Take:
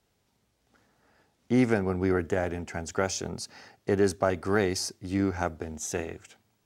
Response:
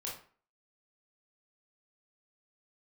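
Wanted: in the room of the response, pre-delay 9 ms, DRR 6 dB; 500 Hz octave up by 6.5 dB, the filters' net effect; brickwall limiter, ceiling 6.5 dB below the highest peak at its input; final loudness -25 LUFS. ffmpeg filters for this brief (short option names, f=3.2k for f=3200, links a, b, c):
-filter_complex "[0:a]equalizer=f=500:t=o:g=8.5,alimiter=limit=-13.5dB:level=0:latency=1,asplit=2[a][b];[1:a]atrim=start_sample=2205,adelay=9[c];[b][c]afir=irnorm=-1:irlink=0,volume=-6dB[d];[a][d]amix=inputs=2:normalize=0,volume=1dB"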